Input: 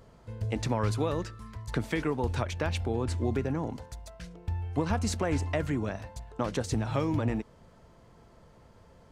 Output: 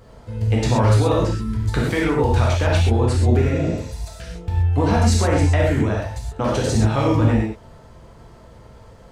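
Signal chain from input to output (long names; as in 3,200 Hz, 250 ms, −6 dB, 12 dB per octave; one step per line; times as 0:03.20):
0:01.22–0:01.63: low shelf with overshoot 430 Hz +7 dB, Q 3
0:03.44–0:04.00: healed spectral selection 730–8,100 Hz both
reverb whose tail is shaped and stops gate 150 ms flat, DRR −4 dB
level +5.5 dB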